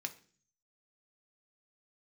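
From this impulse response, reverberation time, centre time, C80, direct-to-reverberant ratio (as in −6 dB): 0.45 s, 6 ms, 20.5 dB, 5.0 dB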